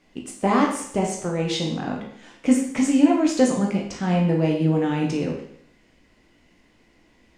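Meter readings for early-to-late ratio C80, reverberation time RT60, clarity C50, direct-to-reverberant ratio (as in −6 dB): 8.0 dB, 0.65 s, 4.5 dB, −1.0 dB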